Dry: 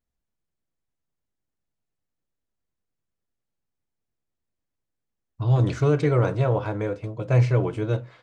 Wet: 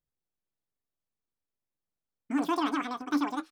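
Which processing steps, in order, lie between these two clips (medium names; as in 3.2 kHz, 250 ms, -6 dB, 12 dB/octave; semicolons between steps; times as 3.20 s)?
speed mistake 33 rpm record played at 78 rpm; warped record 45 rpm, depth 160 cents; trim -8 dB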